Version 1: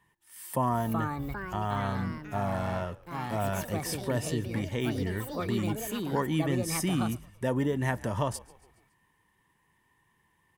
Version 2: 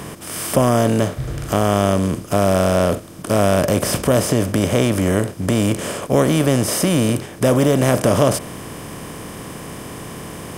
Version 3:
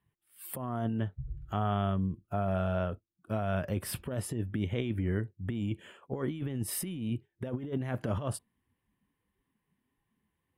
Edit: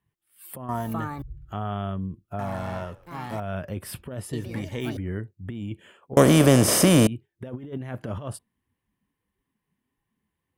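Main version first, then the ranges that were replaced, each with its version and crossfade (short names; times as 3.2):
3
0.69–1.22 from 1
2.39–3.4 from 1
4.33–4.97 from 1
6.17–7.07 from 2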